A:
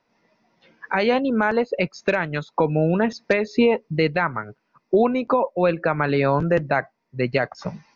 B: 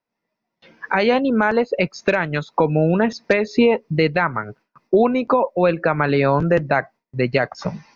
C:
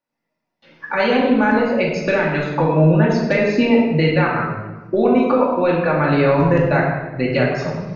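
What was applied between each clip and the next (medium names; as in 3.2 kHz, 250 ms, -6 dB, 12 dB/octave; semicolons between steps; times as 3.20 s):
gate with hold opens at -50 dBFS; in parallel at -2 dB: compression, threshold -28 dBFS, peak gain reduction 14.5 dB; on the sum: trim +1 dB
simulated room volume 740 m³, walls mixed, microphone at 2.4 m; trim -4 dB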